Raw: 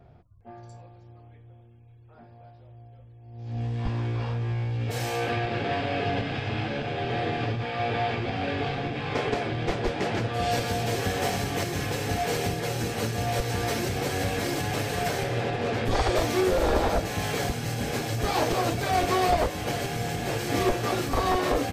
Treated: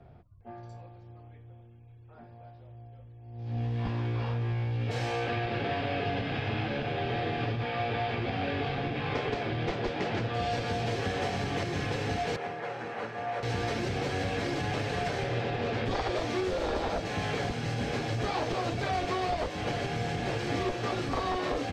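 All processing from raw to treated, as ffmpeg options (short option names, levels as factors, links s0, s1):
-filter_complex "[0:a]asettb=1/sr,asplit=3[s0][s1][s2];[s0]atrim=end=12.364[s3];[s1]atrim=start=12.36:end=13.43,asetpts=PTS-STARTPTS,afade=t=in:d=0.004:c=qsin,afade=t=out:st=1.066:d=0.004:c=qsin,highpass=150,acrossover=split=570 2100:gain=0.251 1 0.141[s4][s5][s6];[s4][s5][s6]amix=inputs=3:normalize=0[s7];[s2]atrim=start=13.426[s8];[s3][s7]acrossfade=d=0.004:c1=hsin:c2=qsin[s9];[s9][s8]acrossfade=d=0.004:c1=qsin:c2=hsin,lowpass=4500,acrossover=split=100|2900[s10][s11][s12];[s10]acompressor=threshold=0.01:ratio=4[s13];[s11]acompressor=threshold=0.0355:ratio=4[s14];[s12]acompressor=threshold=0.00708:ratio=4[s15];[s13][s14][s15]amix=inputs=3:normalize=0"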